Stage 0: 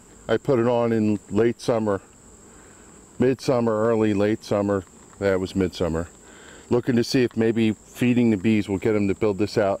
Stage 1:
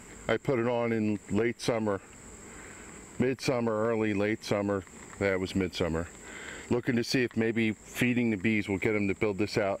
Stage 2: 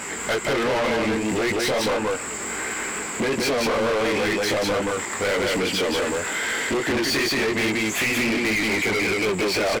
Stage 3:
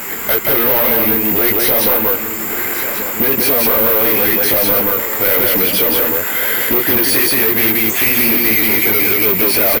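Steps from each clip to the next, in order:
downward compressor 4 to 1, threshold −26 dBFS, peak gain reduction 10 dB; parametric band 2,100 Hz +12.5 dB 0.49 octaves
chorus effect 2.6 Hz, delay 18 ms, depth 4.5 ms; single-tap delay 178 ms −4 dB; mid-hump overdrive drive 31 dB, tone 7,800 Hz, clips at −15.5 dBFS
bad sample-rate conversion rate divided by 3×, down filtered, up zero stuff; single-tap delay 1,142 ms −10.5 dB; level +4.5 dB

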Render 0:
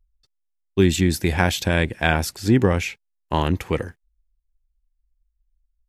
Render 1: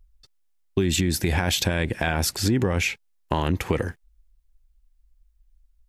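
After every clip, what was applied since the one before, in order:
brickwall limiter −14 dBFS, peak gain reduction 11.5 dB
downward compressor 3 to 1, threshold −30 dBFS, peak gain reduction 9 dB
level +9 dB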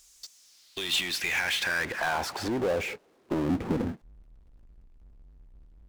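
band-pass filter sweep 6,600 Hz → 240 Hz, 0:00.27–0:03.61
power curve on the samples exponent 0.5
level −1.5 dB

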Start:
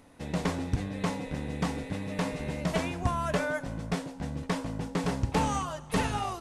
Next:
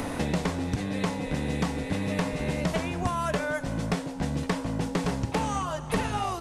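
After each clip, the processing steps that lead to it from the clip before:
multiband upward and downward compressor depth 100%
level +1.5 dB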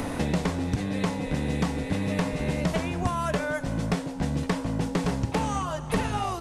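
low-shelf EQ 320 Hz +2.5 dB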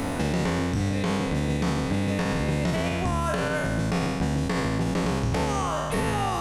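peak hold with a decay on every bin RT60 1.57 s
brickwall limiter −16.5 dBFS, peak gain reduction 6.5 dB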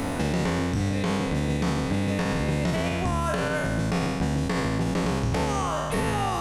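no processing that can be heard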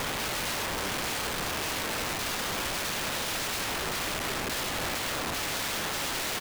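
downsampling to 8,000 Hz
wrap-around overflow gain 27 dB

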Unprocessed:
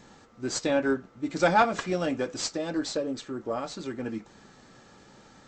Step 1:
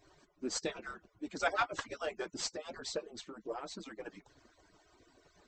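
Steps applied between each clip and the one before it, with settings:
harmonic-percussive split with one part muted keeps percussive
notch filter 7,000 Hz, Q 24
level −5.5 dB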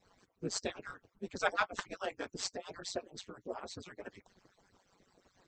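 harmonic and percussive parts rebalanced harmonic −12 dB
ring modulation 94 Hz
level +3 dB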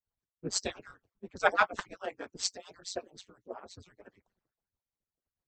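multiband upward and downward expander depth 100%
level −1.5 dB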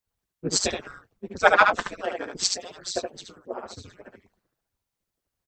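single-tap delay 73 ms −4.5 dB
level +8 dB

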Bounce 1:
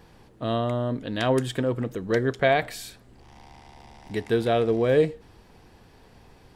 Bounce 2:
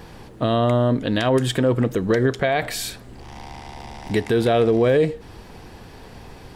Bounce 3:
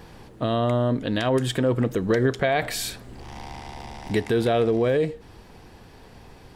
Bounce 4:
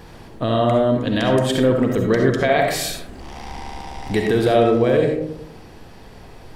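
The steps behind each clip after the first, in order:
in parallel at −2 dB: downward compressor, threshold −33 dBFS, peak gain reduction 17 dB; on the sum: brickwall limiter −16.5 dBFS, peak gain reduction 9.5 dB; level +6.5 dB
speech leveller 2 s; level −3 dB
comb and all-pass reverb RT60 0.78 s, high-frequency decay 0.3×, pre-delay 25 ms, DRR 2 dB; level +3 dB

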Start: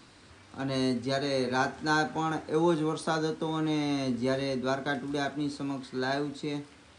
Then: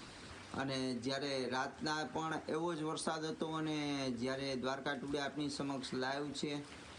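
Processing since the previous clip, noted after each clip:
harmonic and percussive parts rebalanced harmonic −9 dB
downward compressor 4 to 1, threshold −44 dBFS, peak gain reduction 15.5 dB
level +6.5 dB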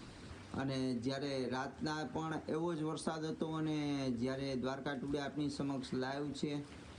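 low-shelf EQ 420 Hz +9.5 dB
level −4.5 dB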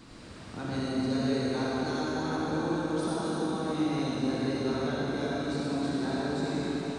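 convolution reverb RT60 4.7 s, pre-delay 15 ms, DRR −8 dB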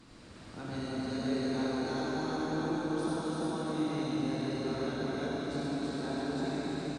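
single-tap delay 335 ms −3 dB
level −5 dB
MP3 112 kbit/s 32,000 Hz

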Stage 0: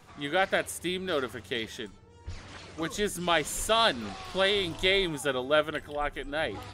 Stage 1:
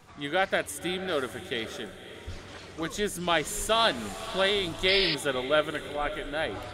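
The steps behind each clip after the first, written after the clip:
feedback delay with all-pass diffusion 561 ms, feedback 49%, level −13 dB
sound drawn into the spectrogram noise, 0:04.88–0:05.15, 1,800–5,200 Hz −28 dBFS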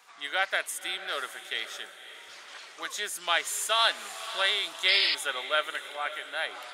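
high-pass filter 1,000 Hz 12 dB per octave
level +2 dB

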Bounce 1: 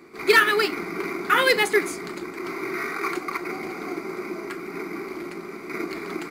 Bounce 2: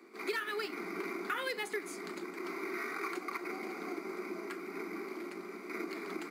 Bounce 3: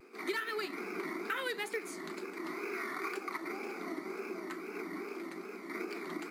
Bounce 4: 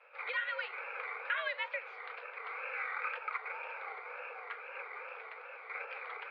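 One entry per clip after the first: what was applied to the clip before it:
Butterworth high-pass 180 Hz 96 dB per octave; downward compressor 6 to 1, threshold −25 dBFS, peak gain reduction 13 dB; level −8.5 dB
tape wow and flutter 120 cents
single-sideband voice off tune +110 Hz 550–3,200 Hz; level +2 dB

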